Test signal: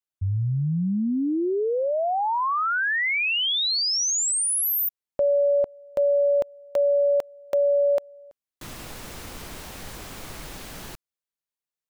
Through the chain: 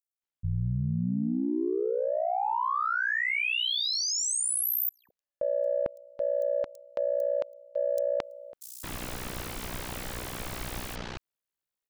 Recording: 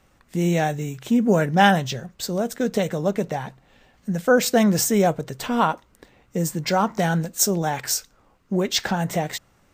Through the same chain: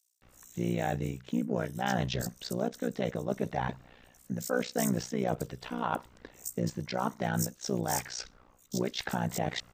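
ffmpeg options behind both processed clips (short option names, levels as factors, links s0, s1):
-filter_complex "[0:a]areverse,acompressor=threshold=0.0355:ratio=6:attack=4.2:release=547:knee=1:detection=rms,areverse,tremolo=f=61:d=0.919,aeval=exprs='0.126*(cos(1*acos(clip(val(0)/0.126,-1,1)))-cos(1*PI/2))+0.00126*(cos(7*acos(clip(val(0)/0.126,-1,1)))-cos(7*PI/2))':c=same,acrossover=split=5600[s0][s1];[s0]adelay=220[s2];[s2][s1]amix=inputs=2:normalize=0,volume=2.11"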